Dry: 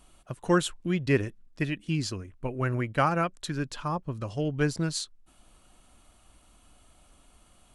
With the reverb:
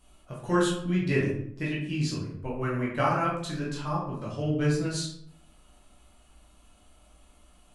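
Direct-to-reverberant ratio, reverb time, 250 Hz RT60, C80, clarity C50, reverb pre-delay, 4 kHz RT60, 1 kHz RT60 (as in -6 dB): -5.5 dB, 0.65 s, 0.75 s, 7.0 dB, 4.0 dB, 10 ms, 0.45 s, 0.65 s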